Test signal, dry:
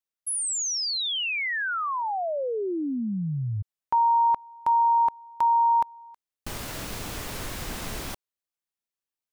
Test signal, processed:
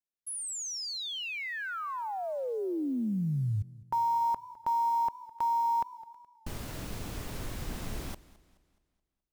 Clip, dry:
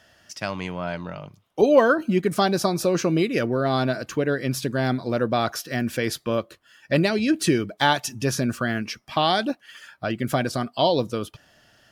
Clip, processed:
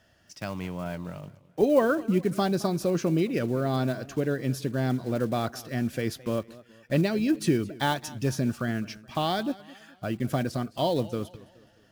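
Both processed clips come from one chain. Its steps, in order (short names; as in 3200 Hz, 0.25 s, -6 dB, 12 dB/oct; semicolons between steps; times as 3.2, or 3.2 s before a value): block floating point 5-bit; low shelf 430 Hz +8.5 dB; warbling echo 0.212 s, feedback 43%, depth 123 cents, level -20 dB; gain -9 dB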